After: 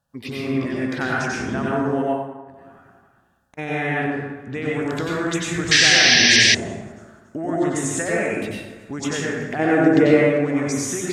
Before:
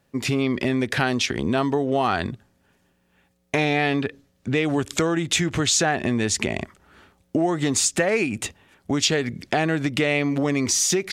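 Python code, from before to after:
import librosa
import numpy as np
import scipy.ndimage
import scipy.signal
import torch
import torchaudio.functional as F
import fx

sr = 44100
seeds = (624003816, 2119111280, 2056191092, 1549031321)

y = fx.env_phaser(x, sr, low_hz=360.0, high_hz=4600.0, full_db=-18.0)
y = fx.echo_feedback(y, sr, ms=281, feedback_pct=38, wet_db=-21)
y = fx.gate_flip(y, sr, shuts_db=-28.0, range_db=-40, at=(2.01, 3.57), fade=0.02)
y = fx.peak_eq(y, sr, hz=420.0, db=14.0, octaves=2.0, at=(9.59, 10.11))
y = fx.rev_plate(y, sr, seeds[0], rt60_s=1.2, hf_ratio=0.55, predelay_ms=80, drr_db=-5.5)
y = fx.spec_paint(y, sr, seeds[1], shape='noise', start_s=5.71, length_s=0.84, low_hz=1600.0, high_hz=6200.0, level_db=-8.0)
y = fx.peak_eq(y, sr, hz=1600.0, db=7.5, octaves=0.6)
y = y * 10.0 ** (-7.5 / 20.0)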